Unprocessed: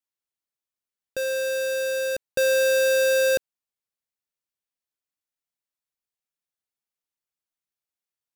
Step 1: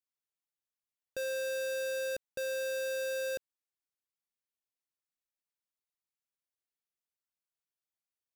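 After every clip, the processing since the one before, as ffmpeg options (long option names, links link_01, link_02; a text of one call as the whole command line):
ffmpeg -i in.wav -af "alimiter=level_in=3.5dB:limit=-24dB:level=0:latency=1,volume=-3.5dB,volume=-7dB" out.wav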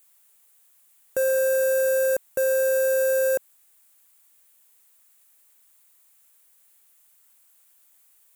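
ffmpeg -i in.wav -filter_complex "[0:a]aexciter=amount=3.7:drive=8.4:freq=7300,asplit=2[link_01][link_02];[link_02]highpass=frequency=720:poles=1,volume=27dB,asoftclip=type=tanh:threshold=-18.5dB[link_03];[link_01][link_03]amix=inputs=2:normalize=0,lowpass=frequency=4500:poles=1,volume=-6dB,volume=6dB" out.wav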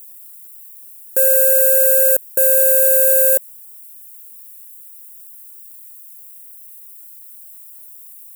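ffmpeg -i in.wav -af "aexciter=amount=5.4:drive=4.9:freq=7700,volume=3dB" out.wav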